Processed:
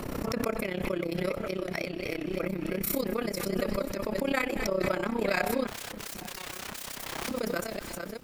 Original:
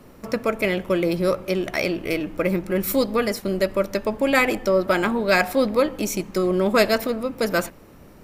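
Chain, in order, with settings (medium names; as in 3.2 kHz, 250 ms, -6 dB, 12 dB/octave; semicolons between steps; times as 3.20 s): chunks repeated in reverse 487 ms, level -7 dB; 5.67–7.31 s: integer overflow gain 23.5 dB; AM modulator 32 Hz, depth 75%; feedback echo behind a high-pass 230 ms, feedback 78%, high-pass 1.5 kHz, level -20.5 dB; swell ahead of each attack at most 22 dB/s; trim -8 dB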